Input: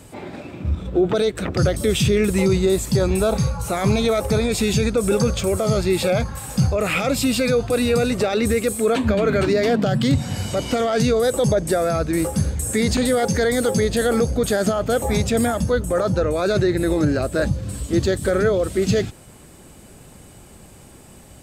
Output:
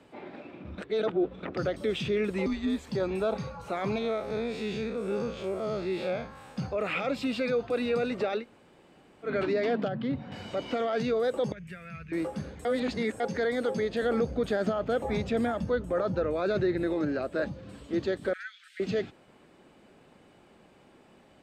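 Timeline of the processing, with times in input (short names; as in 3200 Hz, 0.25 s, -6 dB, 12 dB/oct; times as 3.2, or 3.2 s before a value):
0.78–1.43 reverse
2.46–2.89 frequency shift -130 Hz
3.98–6.57 time blur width 96 ms
8.4–9.27 room tone, crossfade 0.10 s
9.88–10.32 tape spacing loss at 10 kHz 27 dB
11.52–12.12 EQ curve 190 Hz 0 dB, 270 Hz -28 dB, 400 Hz -21 dB, 750 Hz -28 dB, 1300 Hz -11 dB, 2600 Hz +4 dB, 3800 Hz -14 dB, 6700 Hz -9 dB, 14000 Hz -4 dB
12.65–13.2 reverse
14.02–16.87 low shelf 130 Hz +11 dB
18.33–18.8 steep high-pass 1500 Hz 72 dB/oct
whole clip: three-band isolator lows -16 dB, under 190 Hz, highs -23 dB, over 4100 Hz; gain -8.5 dB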